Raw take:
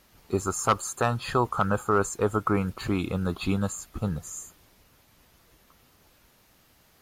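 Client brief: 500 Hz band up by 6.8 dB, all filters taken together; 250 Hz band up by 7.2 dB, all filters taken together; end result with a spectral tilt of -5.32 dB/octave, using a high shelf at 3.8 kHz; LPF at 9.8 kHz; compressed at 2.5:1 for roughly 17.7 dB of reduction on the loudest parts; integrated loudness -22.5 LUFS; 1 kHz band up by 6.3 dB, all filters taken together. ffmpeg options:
-af "lowpass=9800,equalizer=f=250:t=o:g=8.5,equalizer=f=500:t=o:g=4,equalizer=f=1000:t=o:g=7.5,highshelf=f=3800:g=-4,acompressor=threshold=0.01:ratio=2.5,volume=5.62"

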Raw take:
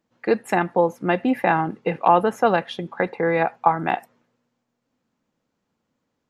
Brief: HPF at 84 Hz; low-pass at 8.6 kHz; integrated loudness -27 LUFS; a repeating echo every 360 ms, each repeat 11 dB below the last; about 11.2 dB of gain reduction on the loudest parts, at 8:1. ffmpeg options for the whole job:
-af "highpass=84,lowpass=8600,acompressor=threshold=0.0794:ratio=8,aecho=1:1:360|720|1080:0.282|0.0789|0.0221,volume=1.19"

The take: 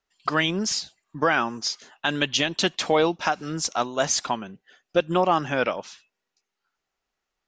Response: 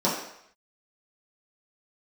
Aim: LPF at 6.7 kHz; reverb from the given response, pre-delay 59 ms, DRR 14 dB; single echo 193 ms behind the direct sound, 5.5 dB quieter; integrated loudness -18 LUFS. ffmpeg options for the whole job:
-filter_complex "[0:a]lowpass=6700,aecho=1:1:193:0.531,asplit=2[s0][s1];[1:a]atrim=start_sample=2205,adelay=59[s2];[s1][s2]afir=irnorm=-1:irlink=0,volume=0.0398[s3];[s0][s3]amix=inputs=2:normalize=0,volume=1.88"

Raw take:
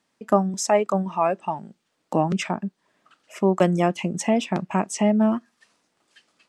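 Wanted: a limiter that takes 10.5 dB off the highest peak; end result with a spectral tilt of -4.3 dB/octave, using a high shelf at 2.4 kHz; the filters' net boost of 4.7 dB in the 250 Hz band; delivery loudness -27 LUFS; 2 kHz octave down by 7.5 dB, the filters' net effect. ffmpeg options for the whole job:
-af "equalizer=f=250:t=o:g=6.5,equalizer=f=2000:t=o:g=-7.5,highshelf=f=2400:g=-4,volume=0.75,alimiter=limit=0.158:level=0:latency=1"

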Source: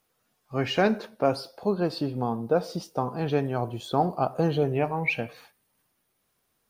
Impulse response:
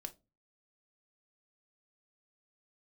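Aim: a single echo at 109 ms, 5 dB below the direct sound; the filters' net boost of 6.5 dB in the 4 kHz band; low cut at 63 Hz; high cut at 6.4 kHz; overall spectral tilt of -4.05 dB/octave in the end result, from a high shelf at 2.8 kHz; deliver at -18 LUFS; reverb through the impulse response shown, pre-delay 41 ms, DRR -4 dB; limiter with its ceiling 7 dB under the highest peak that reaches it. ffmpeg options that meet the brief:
-filter_complex "[0:a]highpass=63,lowpass=6400,highshelf=f=2800:g=4.5,equalizer=f=4000:t=o:g=6,alimiter=limit=0.178:level=0:latency=1,aecho=1:1:109:0.562,asplit=2[s0][s1];[1:a]atrim=start_sample=2205,adelay=41[s2];[s1][s2]afir=irnorm=-1:irlink=0,volume=2.51[s3];[s0][s3]amix=inputs=2:normalize=0,volume=1.5"

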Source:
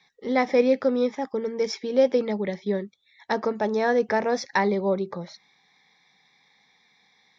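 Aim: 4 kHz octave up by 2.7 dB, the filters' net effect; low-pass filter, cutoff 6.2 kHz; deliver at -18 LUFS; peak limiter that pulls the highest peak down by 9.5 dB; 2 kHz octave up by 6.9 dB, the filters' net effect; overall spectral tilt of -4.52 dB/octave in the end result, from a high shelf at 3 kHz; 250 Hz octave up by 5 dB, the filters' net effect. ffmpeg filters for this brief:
-af "lowpass=6200,equalizer=f=250:t=o:g=5.5,equalizer=f=2000:t=o:g=8,highshelf=f=3000:g=-4.5,equalizer=f=4000:t=o:g=6.5,volume=2.24,alimiter=limit=0.422:level=0:latency=1"

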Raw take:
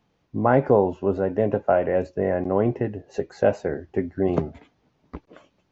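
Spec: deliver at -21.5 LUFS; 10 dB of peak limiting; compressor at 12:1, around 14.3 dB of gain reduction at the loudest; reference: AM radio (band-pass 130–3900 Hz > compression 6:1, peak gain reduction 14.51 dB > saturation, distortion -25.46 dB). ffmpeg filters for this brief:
-af "acompressor=threshold=0.0447:ratio=12,alimiter=limit=0.075:level=0:latency=1,highpass=130,lowpass=3900,acompressor=threshold=0.00708:ratio=6,asoftclip=threshold=0.0282,volume=22.4"

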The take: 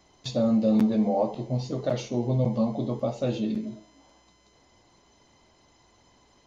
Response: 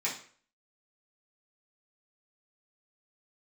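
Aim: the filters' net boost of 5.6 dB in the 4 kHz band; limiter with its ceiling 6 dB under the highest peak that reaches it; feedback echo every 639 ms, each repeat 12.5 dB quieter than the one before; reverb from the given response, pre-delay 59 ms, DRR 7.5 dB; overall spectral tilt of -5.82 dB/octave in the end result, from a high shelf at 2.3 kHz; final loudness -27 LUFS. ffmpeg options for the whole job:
-filter_complex "[0:a]highshelf=f=2300:g=-3,equalizer=f=4000:t=o:g=9,alimiter=limit=0.112:level=0:latency=1,aecho=1:1:639|1278|1917:0.237|0.0569|0.0137,asplit=2[s0][s1];[1:a]atrim=start_sample=2205,adelay=59[s2];[s1][s2]afir=irnorm=-1:irlink=0,volume=0.2[s3];[s0][s3]amix=inputs=2:normalize=0,volume=1.12"

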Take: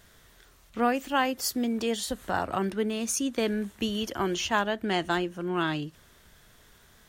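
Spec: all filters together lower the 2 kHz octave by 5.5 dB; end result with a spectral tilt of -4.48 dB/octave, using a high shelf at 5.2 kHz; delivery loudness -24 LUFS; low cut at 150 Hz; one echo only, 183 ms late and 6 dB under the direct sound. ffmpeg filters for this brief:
-af "highpass=150,equalizer=f=2000:t=o:g=-6.5,highshelf=f=5200:g=-8.5,aecho=1:1:183:0.501,volume=1.88"

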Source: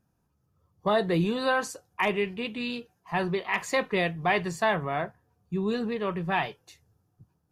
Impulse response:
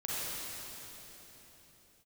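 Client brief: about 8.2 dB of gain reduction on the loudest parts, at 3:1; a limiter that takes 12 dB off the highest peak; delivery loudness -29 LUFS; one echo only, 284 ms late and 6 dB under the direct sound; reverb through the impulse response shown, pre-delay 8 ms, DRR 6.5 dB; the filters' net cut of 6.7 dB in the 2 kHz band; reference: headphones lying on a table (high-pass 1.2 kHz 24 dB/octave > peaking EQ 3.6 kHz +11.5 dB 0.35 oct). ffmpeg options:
-filter_complex "[0:a]equalizer=f=2000:t=o:g=-9,acompressor=threshold=0.0224:ratio=3,alimiter=level_in=2.82:limit=0.0631:level=0:latency=1,volume=0.355,aecho=1:1:284:0.501,asplit=2[s0][s1];[1:a]atrim=start_sample=2205,adelay=8[s2];[s1][s2]afir=irnorm=-1:irlink=0,volume=0.251[s3];[s0][s3]amix=inputs=2:normalize=0,highpass=f=1200:w=0.5412,highpass=f=1200:w=1.3066,equalizer=f=3600:t=o:w=0.35:g=11.5,volume=5.96"

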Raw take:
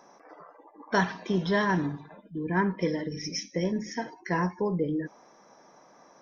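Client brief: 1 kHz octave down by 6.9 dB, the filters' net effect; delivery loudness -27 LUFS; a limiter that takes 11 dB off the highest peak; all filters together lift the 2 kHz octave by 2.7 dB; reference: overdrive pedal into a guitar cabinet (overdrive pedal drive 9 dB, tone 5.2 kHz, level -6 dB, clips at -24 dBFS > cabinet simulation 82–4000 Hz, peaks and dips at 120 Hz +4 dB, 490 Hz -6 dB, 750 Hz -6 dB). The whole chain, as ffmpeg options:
-filter_complex "[0:a]equalizer=f=1000:t=o:g=-7,equalizer=f=2000:t=o:g=6,alimiter=limit=0.0631:level=0:latency=1,asplit=2[s0][s1];[s1]highpass=f=720:p=1,volume=2.82,asoftclip=type=tanh:threshold=0.0631[s2];[s0][s2]amix=inputs=2:normalize=0,lowpass=f=5200:p=1,volume=0.501,highpass=82,equalizer=f=120:t=q:w=4:g=4,equalizer=f=490:t=q:w=4:g=-6,equalizer=f=750:t=q:w=4:g=-6,lowpass=f=4000:w=0.5412,lowpass=f=4000:w=1.3066,volume=2.66"

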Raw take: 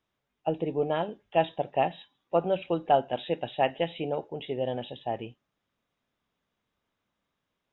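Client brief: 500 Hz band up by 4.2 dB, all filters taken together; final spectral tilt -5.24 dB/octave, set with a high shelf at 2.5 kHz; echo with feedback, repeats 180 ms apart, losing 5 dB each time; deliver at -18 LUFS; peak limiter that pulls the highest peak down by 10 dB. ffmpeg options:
-af "equalizer=f=500:t=o:g=5.5,highshelf=f=2500:g=-4,alimiter=limit=0.126:level=0:latency=1,aecho=1:1:180|360|540|720|900|1080|1260:0.562|0.315|0.176|0.0988|0.0553|0.031|0.0173,volume=3.76"

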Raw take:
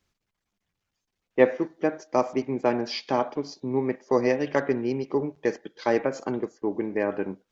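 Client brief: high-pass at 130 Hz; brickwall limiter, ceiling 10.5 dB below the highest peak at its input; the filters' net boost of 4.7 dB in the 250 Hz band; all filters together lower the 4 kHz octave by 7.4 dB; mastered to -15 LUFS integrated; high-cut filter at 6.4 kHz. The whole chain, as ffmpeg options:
-af "highpass=130,lowpass=6400,equalizer=f=250:t=o:g=6,equalizer=f=4000:t=o:g=-9,volume=3.76,alimiter=limit=0.841:level=0:latency=1"

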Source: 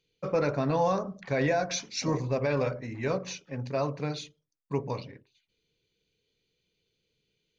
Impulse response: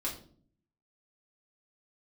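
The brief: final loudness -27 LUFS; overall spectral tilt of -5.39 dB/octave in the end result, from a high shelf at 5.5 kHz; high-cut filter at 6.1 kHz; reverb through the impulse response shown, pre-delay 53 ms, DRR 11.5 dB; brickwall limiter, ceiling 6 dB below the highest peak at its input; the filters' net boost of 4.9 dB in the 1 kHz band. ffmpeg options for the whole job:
-filter_complex "[0:a]lowpass=6100,equalizer=f=1000:t=o:g=6.5,highshelf=f=5500:g=-5.5,alimiter=limit=0.106:level=0:latency=1,asplit=2[s0][s1];[1:a]atrim=start_sample=2205,adelay=53[s2];[s1][s2]afir=irnorm=-1:irlink=0,volume=0.188[s3];[s0][s3]amix=inputs=2:normalize=0,volume=1.58"

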